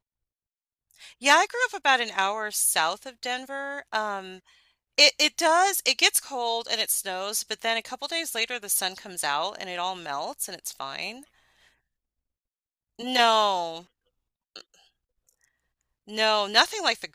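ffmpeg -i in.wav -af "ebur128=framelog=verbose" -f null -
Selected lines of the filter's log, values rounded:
Integrated loudness:
  I:         -24.3 LUFS
  Threshold: -35.4 LUFS
Loudness range:
  LRA:         9.7 LU
  Threshold: -46.1 LUFS
  LRA low:   -32.2 LUFS
  LRA high:  -22.6 LUFS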